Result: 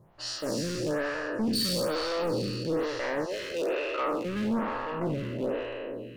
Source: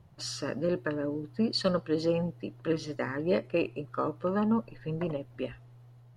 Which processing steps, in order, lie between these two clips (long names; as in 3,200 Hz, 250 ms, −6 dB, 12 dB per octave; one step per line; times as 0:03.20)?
peak hold with a decay on every bin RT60 2.94 s
0:03.24–0:04.24: high-pass filter 570 Hz → 230 Hz 24 dB per octave
hard clipping −27 dBFS, distortion −8 dB
phaser with staggered stages 1.1 Hz
level +3 dB